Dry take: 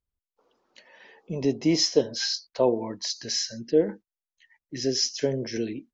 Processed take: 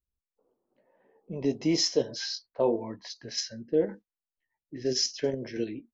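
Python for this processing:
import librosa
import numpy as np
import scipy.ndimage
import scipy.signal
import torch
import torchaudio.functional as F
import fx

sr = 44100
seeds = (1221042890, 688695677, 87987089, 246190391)

p1 = fx.chorus_voices(x, sr, voices=2, hz=0.94, base_ms=18, depth_ms=3.0, mix_pct=25)
p2 = fx.env_lowpass(p1, sr, base_hz=530.0, full_db=-23.5)
p3 = fx.level_steps(p2, sr, step_db=15)
p4 = p2 + (p3 * 10.0 ** (1.5 / 20.0))
y = p4 * 10.0 ** (-5.0 / 20.0)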